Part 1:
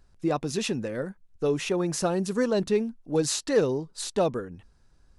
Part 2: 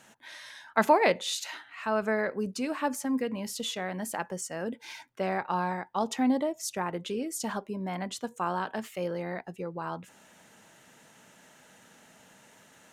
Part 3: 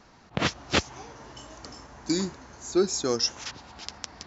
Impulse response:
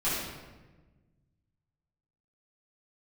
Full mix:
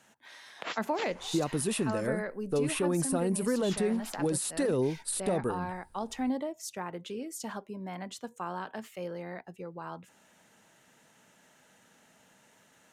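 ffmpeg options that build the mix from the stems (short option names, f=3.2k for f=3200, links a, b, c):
-filter_complex "[0:a]adelay=1100,volume=0.5dB[a];[1:a]volume=-5.5dB[b];[2:a]acompressor=threshold=-28dB:ratio=2.5,highpass=590,adelay=250,volume=-3dB,asplit=3[c][d][e];[c]atrim=end=2.07,asetpts=PTS-STARTPTS,afade=t=out:st=2.066:d=0.004:c=hsin[f];[d]atrim=start=2.07:end=3.54,asetpts=PTS-STARTPTS,volume=0[g];[e]atrim=start=3.54,asetpts=PTS-STARTPTS,afade=t=in:d=0.004:c=hsin[h];[f][g][h]concat=n=3:v=0:a=1[i];[a][i]amix=inputs=2:normalize=0,highshelf=f=7.7k:t=q:w=3:g=8,alimiter=limit=-19.5dB:level=0:latency=1:release=65,volume=0dB[j];[b][j]amix=inputs=2:normalize=0,acrossover=split=410[k][l];[l]acompressor=threshold=-32dB:ratio=2.5[m];[k][m]amix=inputs=2:normalize=0"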